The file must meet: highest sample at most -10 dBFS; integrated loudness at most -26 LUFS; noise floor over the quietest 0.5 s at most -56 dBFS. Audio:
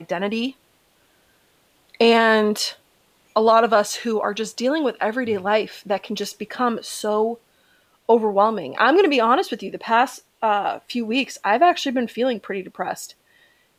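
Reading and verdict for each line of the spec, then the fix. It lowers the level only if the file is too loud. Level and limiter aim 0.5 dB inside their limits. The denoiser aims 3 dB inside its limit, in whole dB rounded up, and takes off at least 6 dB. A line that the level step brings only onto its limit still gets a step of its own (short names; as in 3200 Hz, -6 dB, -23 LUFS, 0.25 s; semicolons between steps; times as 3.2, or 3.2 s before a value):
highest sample -4.5 dBFS: fail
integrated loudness -20.5 LUFS: fail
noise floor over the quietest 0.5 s -61 dBFS: OK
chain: gain -6 dB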